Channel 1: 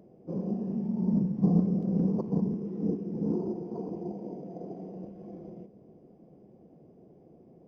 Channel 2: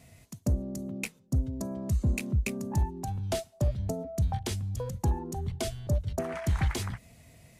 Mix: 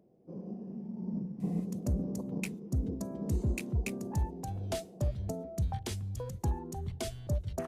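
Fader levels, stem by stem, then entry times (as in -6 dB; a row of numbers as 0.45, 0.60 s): -10.0, -4.5 dB; 0.00, 1.40 s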